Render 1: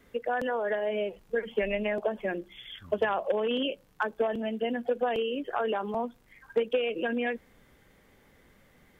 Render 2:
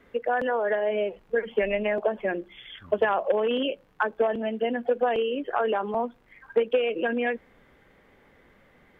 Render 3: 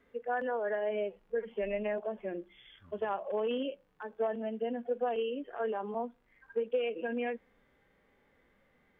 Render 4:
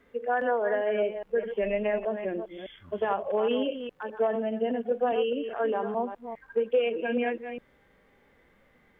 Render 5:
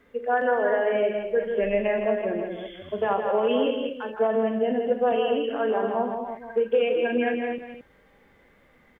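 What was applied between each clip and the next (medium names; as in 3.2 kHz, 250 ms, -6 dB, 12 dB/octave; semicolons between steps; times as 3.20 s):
tone controls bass -5 dB, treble -14 dB; trim +4.5 dB
harmonic-percussive split percussive -14 dB; trim -7 dB
chunks repeated in reverse 205 ms, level -9 dB; trim +6 dB
loudspeakers at several distances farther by 14 m -11 dB, 55 m -6 dB, 78 m -9 dB; trim +2.5 dB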